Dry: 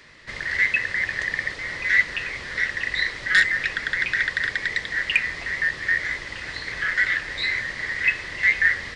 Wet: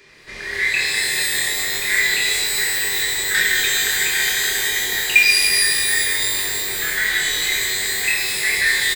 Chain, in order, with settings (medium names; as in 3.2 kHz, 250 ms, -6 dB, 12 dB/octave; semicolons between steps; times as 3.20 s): treble shelf 4.9 kHz +7.5 dB; doubling 27 ms -5.5 dB; small resonant body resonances 400/2400 Hz, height 13 dB, ringing for 45 ms; pitch-shifted reverb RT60 2.5 s, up +12 st, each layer -2 dB, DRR -1.5 dB; trim -4.5 dB